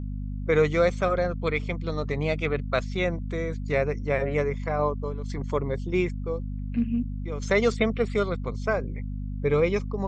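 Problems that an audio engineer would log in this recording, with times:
mains hum 50 Hz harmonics 5 −32 dBFS

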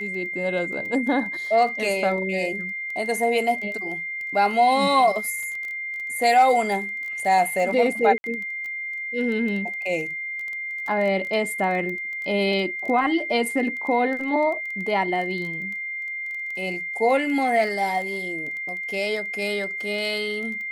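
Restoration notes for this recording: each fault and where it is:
surface crackle 14 per second −30 dBFS
whistle 2,100 Hz −28 dBFS
0:08.18–0:08.24: drop-out 61 ms

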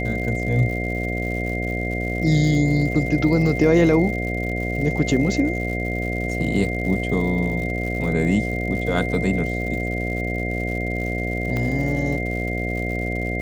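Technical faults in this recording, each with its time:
mains buzz 60 Hz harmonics 12 −26 dBFS
surface crackle 160 per second −31 dBFS
whistle 2,100 Hz −28 dBFS
0:11.57: click −14 dBFS

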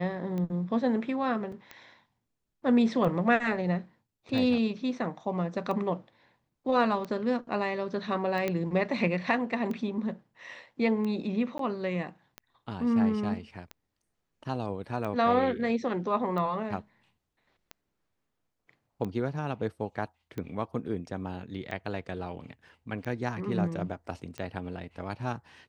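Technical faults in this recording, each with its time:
scratch tick 45 rpm −24 dBFS
0:01.52: drop-out 4.2 ms
0:08.48: click −16 dBFS
0:11.58–0:11.59: drop-out 13 ms

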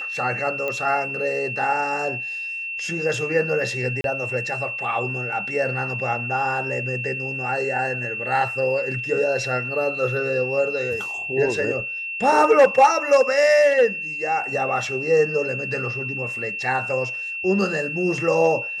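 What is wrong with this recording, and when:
whistle 2,700 Hz −27 dBFS
0:00.68: click −14 dBFS
0:04.01–0:04.04: drop-out 32 ms

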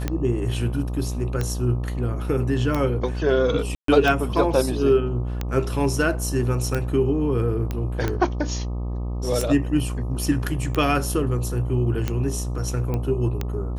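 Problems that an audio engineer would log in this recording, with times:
mains buzz 60 Hz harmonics 21 −27 dBFS
scratch tick 45 rpm −11 dBFS
0:03.75–0:03.88: drop-out 133 ms
0:07.71: click −14 dBFS
0:12.94: click −15 dBFS

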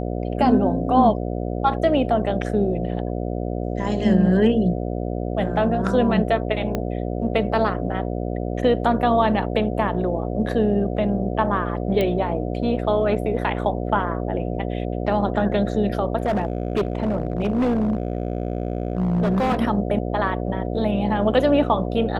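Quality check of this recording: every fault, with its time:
mains buzz 60 Hz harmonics 12 −26 dBFS
0:06.75: click −11 dBFS
0:12.01: click −11 dBFS
0:16.18–0:19.60: clipping −16.5 dBFS

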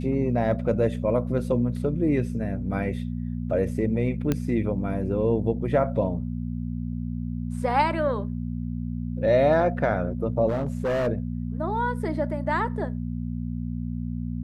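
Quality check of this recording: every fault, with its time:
mains hum 60 Hz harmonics 4 −30 dBFS
0:04.32: click −11 dBFS
0:10.48–0:11.08: clipping −22 dBFS

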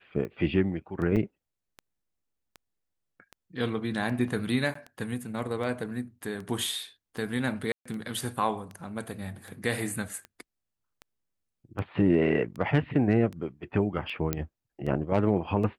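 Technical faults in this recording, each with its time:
scratch tick 78 rpm −27 dBFS
0:01.16–0:01.17: drop-out 6.6 ms
0:04.74–0:04.75: drop-out 14 ms
0:07.72–0:07.86: drop-out 135 ms
0:14.33: click −12 dBFS

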